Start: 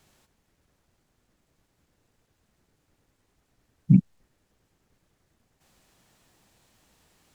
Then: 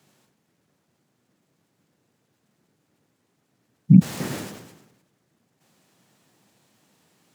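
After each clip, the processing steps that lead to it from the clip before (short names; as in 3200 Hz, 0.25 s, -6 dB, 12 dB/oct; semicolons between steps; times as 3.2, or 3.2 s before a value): HPF 120 Hz 24 dB/oct; bell 190 Hz +4.5 dB 2.4 oct; sustainer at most 54 dB/s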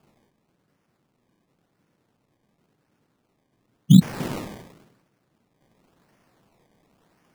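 decimation with a swept rate 22×, swing 100% 0.93 Hz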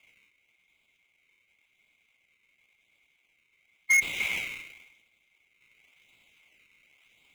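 band-swap scrambler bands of 2000 Hz; soft clip -18.5 dBFS, distortion -5 dB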